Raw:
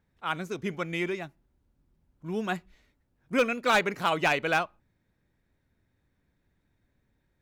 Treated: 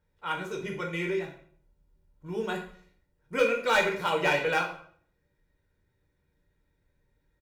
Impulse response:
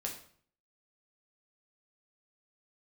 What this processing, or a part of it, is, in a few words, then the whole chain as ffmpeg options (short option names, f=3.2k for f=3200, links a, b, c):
microphone above a desk: -filter_complex "[0:a]aecho=1:1:2.1:0.52[a];[1:a]atrim=start_sample=2205[b];[a][b]afir=irnorm=-1:irlink=0,volume=-2dB"